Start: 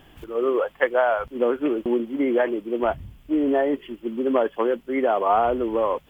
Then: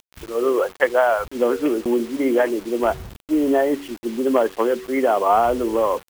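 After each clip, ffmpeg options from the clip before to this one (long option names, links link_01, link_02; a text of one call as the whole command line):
ffmpeg -i in.wav -af "bandreject=frequency=94.42:width_type=h:width=4,bandreject=frequency=188.84:width_type=h:width=4,bandreject=frequency=283.26:width_type=h:width=4,bandreject=frequency=377.68:width_type=h:width=4,bandreject=frequency=472.1:width_type=h:width=4,acrusher=bits=6:mix=0:aa=0.000001,volume=3dB" out.wav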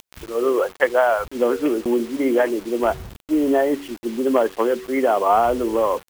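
ffmpeg -i in.wav -af "acompressor=mode=upward:threshold=-37dB:ratio=2.5" out.wav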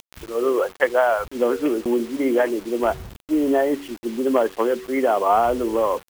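ffmpeg -i in.wav -af "acrusher=bits=10:mix=0:aa=0.000001,volume=-1dB" out.wav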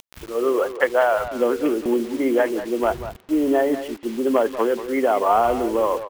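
ffmpeg -i in.wav -filter_complex "[0:a]asplit=2[link_01][link_02];[link_02]adelay=190,highpass=300,lowpass=3400,asoftclip=type=hard:threshold=-14.5dB,volume=-11dB[link_03];[link_01][link_03]amix=inputs=2:normalize=0" out.wav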